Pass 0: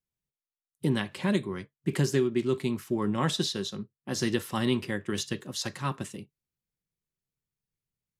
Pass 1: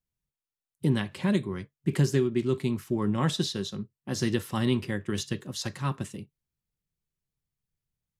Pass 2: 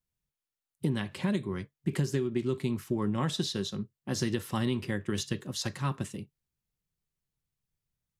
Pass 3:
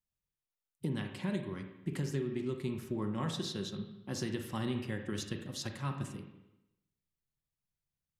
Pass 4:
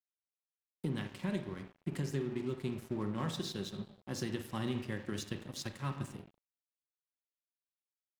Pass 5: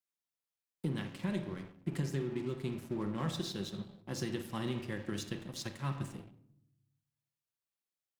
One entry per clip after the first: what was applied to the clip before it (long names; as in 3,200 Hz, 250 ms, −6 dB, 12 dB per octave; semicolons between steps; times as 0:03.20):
low-shelf EQ 140 Hz +10 dB; level −1.5 dB
downward compressor, threshold −25 dBFS, peak gain reduction 7 dB
convolution reverb RT60 0.90 s, pre-delay 36 ms, DRR 5 dB; level −6.5 dB
dead-zone distortion −50.5 dBFS
rectangular room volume 2,100 cubic metres, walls furnished, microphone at 0.75 metres